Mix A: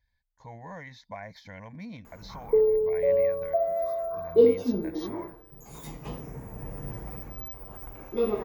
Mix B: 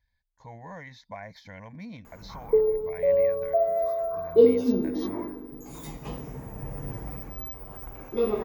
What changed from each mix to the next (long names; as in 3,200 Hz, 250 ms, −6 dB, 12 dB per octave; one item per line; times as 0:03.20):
reverb: on, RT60 2.4 s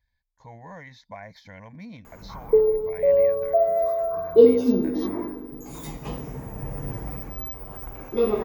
background +3.5 dB